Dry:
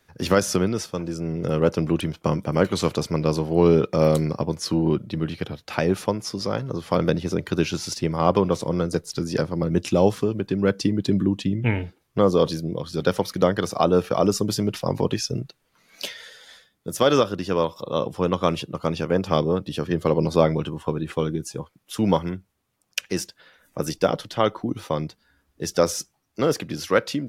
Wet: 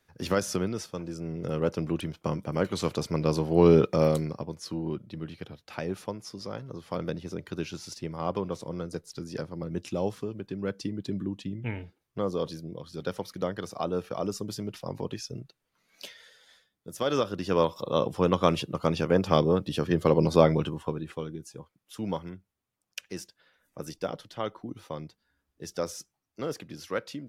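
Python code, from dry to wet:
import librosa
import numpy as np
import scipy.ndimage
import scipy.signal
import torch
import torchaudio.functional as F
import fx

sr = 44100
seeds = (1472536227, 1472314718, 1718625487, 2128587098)

y = fx.gain(x, sr, db=fx.line((2.65, -7.5), (3.81, -1.0), (4.48, -11.5), (16.95, -11.5), (17.6, -1.5), (20.63, -1.5), (21.25, -12.0)))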